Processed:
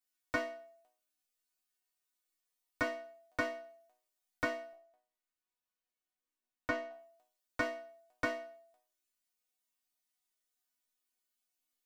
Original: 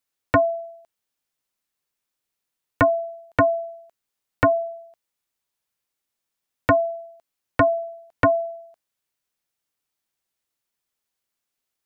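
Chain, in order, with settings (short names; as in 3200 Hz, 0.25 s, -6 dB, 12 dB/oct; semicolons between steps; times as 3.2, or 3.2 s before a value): high shelf 2800 Hz +5.5 dB, from 4.73 s -6 dB, from 6.91 s +5.5 dB; soft clip -14.5 dBFS, distortion -14 dB; resonator bank B3 major, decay 0.44 s; gain +11.5 dB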